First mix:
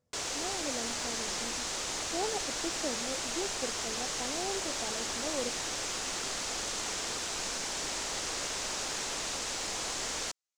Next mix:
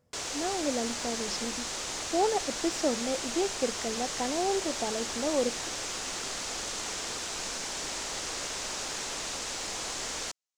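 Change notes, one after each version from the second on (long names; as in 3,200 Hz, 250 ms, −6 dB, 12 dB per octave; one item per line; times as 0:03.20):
speech +8.5 dB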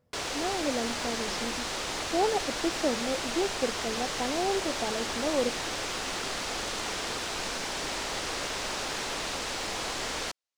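background +5.0 dB
master: add parametric band 7,000 Hz −9 dB 0.95 octaves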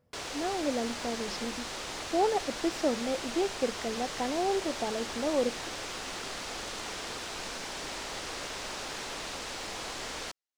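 background −5.0 dB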